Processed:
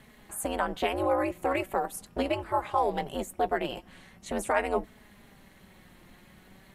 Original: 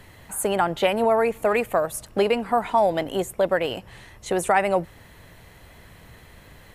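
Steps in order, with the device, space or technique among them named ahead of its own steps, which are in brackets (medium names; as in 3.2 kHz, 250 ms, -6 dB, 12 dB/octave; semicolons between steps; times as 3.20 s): alien voice (ring modulator 140 Hz; flange 0.41 Hz, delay 4.6 ms, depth 1.1 ms, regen +54%)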